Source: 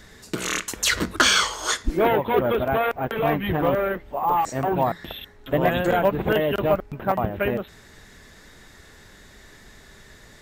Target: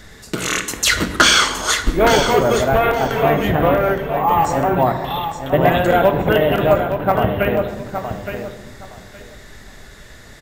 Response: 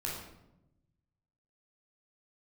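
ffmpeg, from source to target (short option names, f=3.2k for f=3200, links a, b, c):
-filter_complex "[0:a]aecho=1:1:867|1734|2601:0.376|0.0714|0.0136,asplit=2[a][b];[1:a]atrim=start_sample=2205,asetrate=34839,aresample=44100[c];[b][c]afir=irnorm=-1:irlink=0,volume=-9.5dB[d];[a][d]amix=inputs=2:normalize=0,volume=3.5dB"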